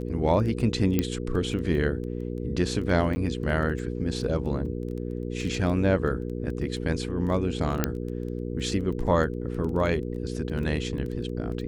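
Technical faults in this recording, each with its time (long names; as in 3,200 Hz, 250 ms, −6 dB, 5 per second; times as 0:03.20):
surface crackle 10 per second −33 dBFS
mains hum 60 Hz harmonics 8 −32 dBFS
0:00.99: click −10 dBFS
0:03.15–0:03.16: drop-out 10 ms
0:04.66: drop-out 3.3 ms
0:07.84: click −7 dBFS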